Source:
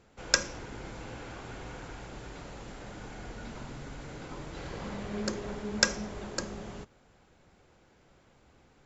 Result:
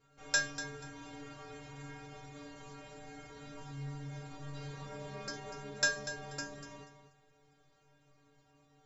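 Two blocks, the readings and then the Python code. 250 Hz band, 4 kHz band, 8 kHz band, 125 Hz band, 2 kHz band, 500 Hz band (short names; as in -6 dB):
-9.0 dB, -6.0 dB, n/a, -2.5 dB, -1.0 dB, -6.5 dB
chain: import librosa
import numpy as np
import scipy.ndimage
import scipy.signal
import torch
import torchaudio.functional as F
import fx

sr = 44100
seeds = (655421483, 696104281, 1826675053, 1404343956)

y = fx.stiff_resonator(x, sr, f0_hz=140.0, decay_s=0.75, stiffness=0.008)
y = fx.echo_feedback(y, sr, ms=242, feedback_pct=23, wet_db=-12.0)
y = y * 10.0 ** (9.5 / 20.0)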